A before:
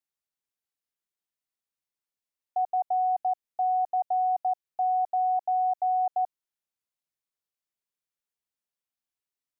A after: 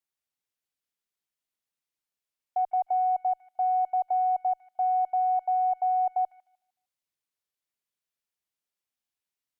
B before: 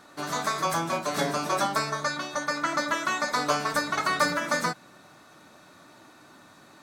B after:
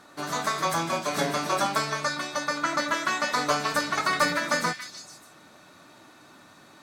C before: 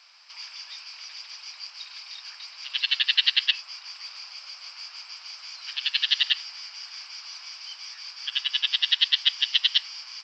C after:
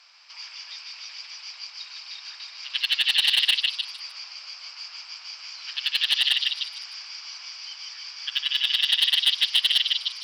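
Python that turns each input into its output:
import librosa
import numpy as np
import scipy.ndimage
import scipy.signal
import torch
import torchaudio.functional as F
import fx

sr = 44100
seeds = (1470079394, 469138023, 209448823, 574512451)

y = fx.cheby_harmonics(x, sr, harmonics=(3, 6, 7, 8), levels_db=(-25, -43, -40, -44), full_scale_db=-5.5)
y = fx.echo_stepped(y, sr, ms=152, hz=2600.0, octaves=0.7, feedback_pct=70, wet_db=-3)
y = np.clip(y, -10.0 ** (-15.0 / 20.0), 10.0 ** (-15.0 / 20.0))
y = F.gain(torch.from_numpy(y), 2.5).numpy()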